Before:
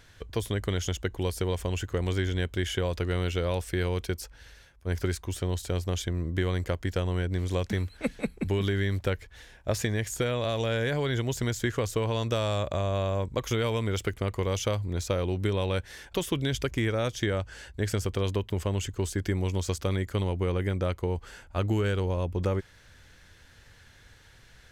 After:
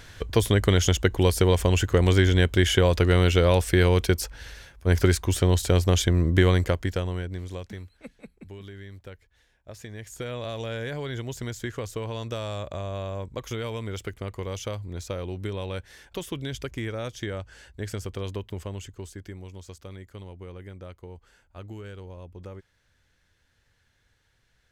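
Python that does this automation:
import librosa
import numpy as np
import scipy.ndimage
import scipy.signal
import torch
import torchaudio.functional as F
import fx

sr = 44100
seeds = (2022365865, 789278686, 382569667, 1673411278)

y = fx.gain(x, sr, db=fx.line((6.49, 9.0), (7.26, -3.5), (8.15, -15.0), (9.71, -15.0), (10.34, -4.5), (18.49, -4.5), (19.49, -13.5)))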